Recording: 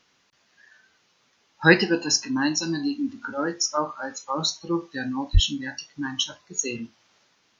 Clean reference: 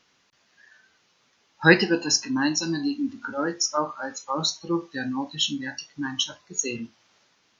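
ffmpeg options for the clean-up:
-filter_complex "[0:a]asplit=3[s0][s1][s2];[s0]afade=t=out:st=5.33:d=0.02[s3];[s1]highpass=f=140:w=0.5412,highpass=f=140:w=1.3066,afade=t=in:st=5.33:d=0.02,afade=t=out:st=5.45:d=0.02[s4];[s2]afade=t=in:st=5.45:d=0.02[s5];[s3][s4][s5]amix=inputs=3:normalize=0"

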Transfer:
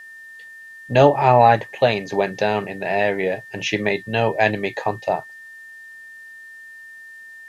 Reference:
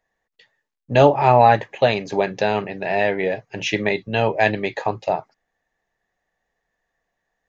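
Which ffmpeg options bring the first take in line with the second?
-af "bandreject=f=1800:w=30,agate=range=0.0891:threshold=0.0224"

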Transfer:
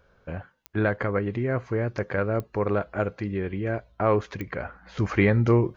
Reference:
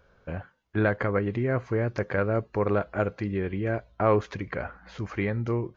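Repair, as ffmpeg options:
-af "adeclick=t=4,asetnsamples=n=441:p=0,asendcmd='4.97 volume volume -8dB',volume=1"

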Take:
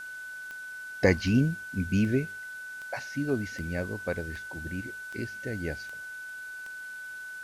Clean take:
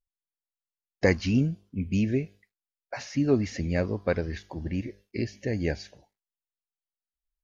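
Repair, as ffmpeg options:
-af "adeclick=t=4,bandreject=f=1500:w=30,afwtdn=0.002,asetnsamples=n=441:p=0,asendcmd='2.99 volume volume 6dB',volume=1"

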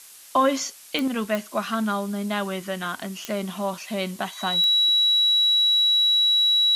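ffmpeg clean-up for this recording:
-af "adeclick=t=4,bandreject=f=3900:w=30,afftdn=nr=25:nf=-44"

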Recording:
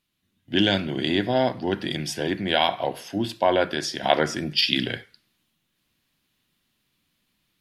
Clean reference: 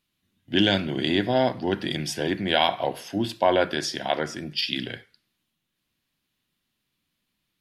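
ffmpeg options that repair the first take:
-af "asetnsamples=n=441:p=0,asendcmd='4.03 volume volume -5.5dB',volume=1"

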